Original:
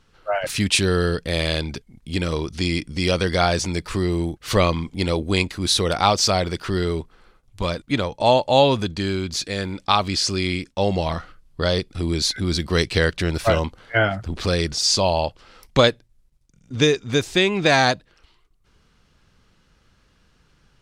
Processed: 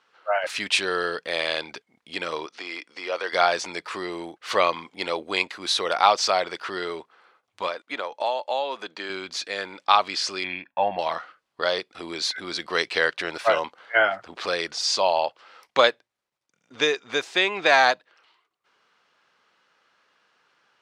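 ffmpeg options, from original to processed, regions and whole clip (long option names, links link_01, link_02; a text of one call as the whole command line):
ffmpeg -i in.wav -filter_complex "[0:a]asettb=1/sr,asplit=3[link_01][link_02][link_03];[link_01]atrim=end=2.464[link_04];[link_02]atrim=start=2.46:end=3.33,asetpts=PTS-STARTPTS,afade=type=in:duration=0.004:curve=qsin,afade=type=out:start_time=0.866:duration=0.004:curve=qsin,deesser=0.75,highpass=420,lowpass=7500,bandreject=frequency=3200:width=28[link_05];[link_03]atrim=start=3.326[link_06];[link_04][link_05]acrossfade=duration=0.004:curve1=hsin:curve2=qsin[link_07];[link_07][link_06]acrossfade=duration=0.004:curve1=qsin:curve2=hsin,asettb=1/sr,asplit=3[link_08][link_09][link_10];[link_08]atrim=end=7.674[link_11];[link_09]atrim=start=7.67:end=9.1,asetpts=PTS-STARTPTS,afade=type=in:duration=0.004:curve=qsin,afade=type=out:start_time=1.426:duration=0.004:curve=qsin,highpass=260,acrossover=split=2400|5100[link_12][link_13][link_14];[link_12]acompressor=threshold=-23dB:ratio=4[link_15];[link_13]acompressor=threshold=-38dB:ratio=4[link_16];[link_14]acompressor=threshold=-48dB:ratio=4[link_17];[link_15][link_16][link_17]amix=inputs=3:normalize=0[link_18];[link_10]atrim=start=9.096[link_19];[link_11][link_18]acrossfade=duration=0.004:curve1=hsin:curve2=qsin[link_20];[link_20][link_19]acrossfade=duration=0.004:curve1=qsin:curve2=hsin,asettb=1/sr,asplit=3[link_21][link_22][link_23];[link_21]atrim=end=10.444[link_24];[link_22]atrim=start=10.44:end=10.99,asetpts=PTS-STARTPTS,afade=type=in:duration=0.004:curve=qsin,afade=type=out:start_time=0.546:duration=0.004:curve=qsin,lowpass=frequency=2500:width=0.5412,lowpass=frequency=2500:width=1.3066,aecho=1:1:1.2:0.73,atrim=end_sample=24255[link_25];[link_23]atrim=start=10.986[link_26];[link_24][link_25]acrossfade=duration=0.004:curve1=hsin:curve2=qsin[link_27];[link_27][link_26]acrossfade=duration=0.004:curve1=qsin:curve2=hsin,highpass=710,aemphasis=mode=reproduction:type=75fm,volume=2.5dB" out.wav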